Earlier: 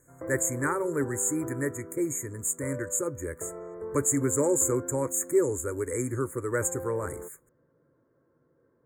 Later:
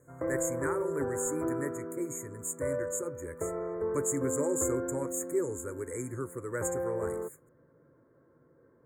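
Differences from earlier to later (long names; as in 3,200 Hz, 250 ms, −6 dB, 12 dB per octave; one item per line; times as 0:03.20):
speech −7.0 dB
background +5.0 dB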